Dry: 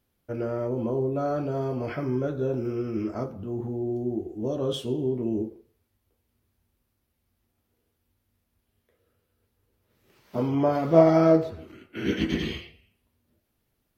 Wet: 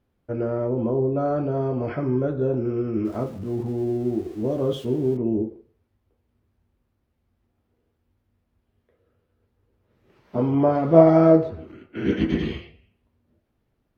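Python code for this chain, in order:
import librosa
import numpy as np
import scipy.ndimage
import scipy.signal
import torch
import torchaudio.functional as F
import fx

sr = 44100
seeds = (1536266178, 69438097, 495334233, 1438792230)

y = fx.crossing_spikes(x, sr, level_db=-32.5, at=(3.05, 5.17))
y = fx.lowpass(y, sr, hz=1300.0, slope=6)
y = y * librosa.db_to_amplitude(4.5)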